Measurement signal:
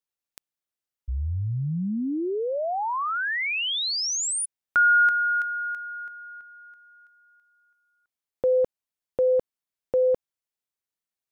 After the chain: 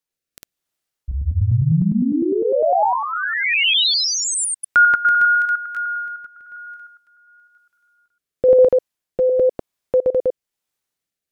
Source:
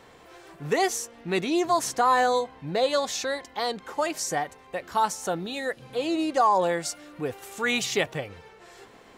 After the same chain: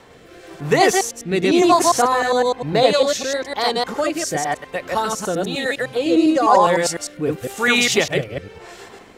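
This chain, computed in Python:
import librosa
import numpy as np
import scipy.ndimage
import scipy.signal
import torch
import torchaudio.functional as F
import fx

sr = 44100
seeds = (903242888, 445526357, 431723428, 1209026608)

y = fx.reverse_delay(x, sr, ms=101, wet_db=-0.5)
y = fx.rotary(y, sr, hz=1.0)
y = y * 10.0 ** (8.5 / 20.0)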